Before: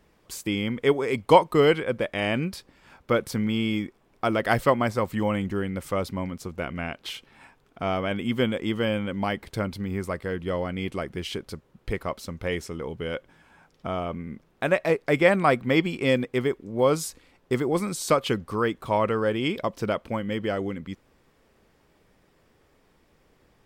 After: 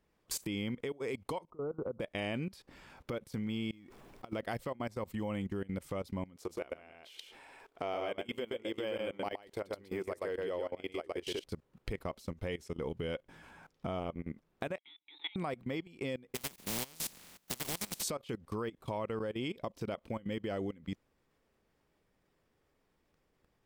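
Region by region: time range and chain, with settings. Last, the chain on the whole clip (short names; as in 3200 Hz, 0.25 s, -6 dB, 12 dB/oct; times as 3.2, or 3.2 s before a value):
1.5–2 brick-wall FIR low-pass 1500 Hz + compressor 3:1, threshold -30 dBFS
3.71–4.33 G.711 law mismatch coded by mu + compressor 10:1, threshold -36 dBFS
6.36–11.44 resonant low shelf 280 Hz -11 dB, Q 1.5 + echo 0.12 s -3 dB + de-esser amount 80%
14.78–15.36 inverted band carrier 3900 Hz + vowel filter u
16.34–18.02 spectral contrast lowered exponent 0.18 + bell 190 Hz +9 dB 0.68 oct + compressor 8:1, threshold -25 dBFS
whole clip: compressor 5:1, threshold -36 dBFS; dynamic EQ 1400 Hz, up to -5 dB, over -55 dBFS, Q 1.5; level quantiser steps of 20 dB; gain +4 dB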